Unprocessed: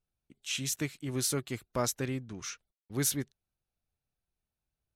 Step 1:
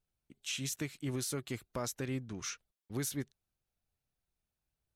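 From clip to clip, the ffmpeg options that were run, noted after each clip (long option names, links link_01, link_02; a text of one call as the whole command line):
ffmpeg -i in.wav -af "alimiter=level_in=3.5dB:limit=-24dB:level=0:latency=1:release=139,volume=-3.5dB" out.wav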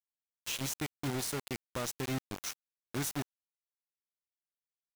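ffmpeg -i in.wav -af "acrusher=bits=5:mix=0:aa=0.000001" out.wav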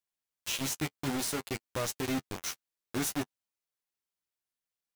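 ffmpeg -i in.wav -af "flanger=delay=9.7:depth=2.9:regen=-15:speed=0.58:shape=triangular,volume=6.5dB" out.wav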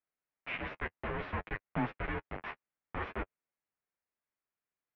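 ffmpeg -i in.wav -af "highpass=frequency=410:width_type=q:width=0.5412,highpass=frequency=410:width_type=q:width=1.307,lowpass=frequency=2700:width_type=q:width=0.5176,lowpass=frequency=2700:width_type=q:width=0.7071,lowpass=frequency=2700:width_type=q:width=1.932,afreqshift=-350,volume=2.5dB" out.wav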